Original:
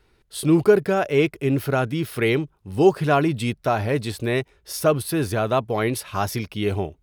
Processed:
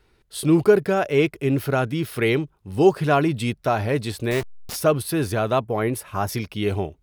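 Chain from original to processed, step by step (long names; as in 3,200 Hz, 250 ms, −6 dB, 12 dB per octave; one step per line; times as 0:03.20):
0:04.31–0:04.76: hold until the input has moved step −26.5 dBFS
0:05.64–0:06.29: parametric band 4,100 Hz −10.5 dB 1.4 octaves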